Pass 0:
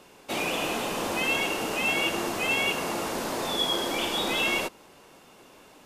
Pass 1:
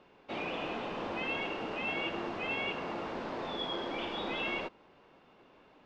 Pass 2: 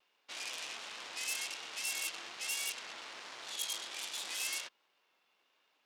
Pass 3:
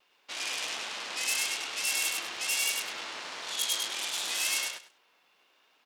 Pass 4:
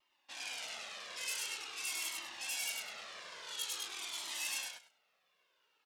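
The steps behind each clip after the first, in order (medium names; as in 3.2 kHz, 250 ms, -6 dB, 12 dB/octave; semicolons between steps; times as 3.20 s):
Bessel low-pass 2.7 kHz, order 4; trim -7 dB
Chebyshev shaper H 7 -28 dB, 8 -13 dB, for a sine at -23.5 dBFS; differentiator; vibrato 1.3 Hz 42 cents; trim +4 dB
feedback delay 101 ms, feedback 20%, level -3 dB; trim +6.5 dB
Shepard-style flanger falling 0.47 Hz; trim -5 dB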